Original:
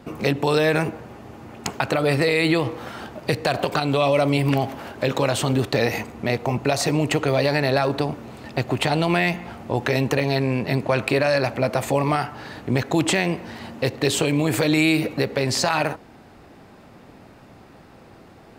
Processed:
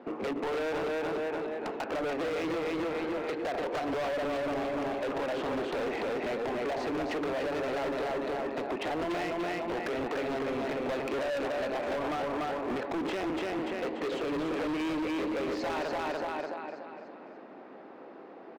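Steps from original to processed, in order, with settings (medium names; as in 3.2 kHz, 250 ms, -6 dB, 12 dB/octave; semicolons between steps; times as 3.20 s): high-pass 280 Hz 24 dB/octave; on a send: feedback delay 291 ms, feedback 46%, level -3.5 dB; on the sum: compression 3:1, threshold -23 dBFS, peak gain reduction 7 dB; tape spacing loss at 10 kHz 42 dB; overload inside the chain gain 32 dB; trim +2 dB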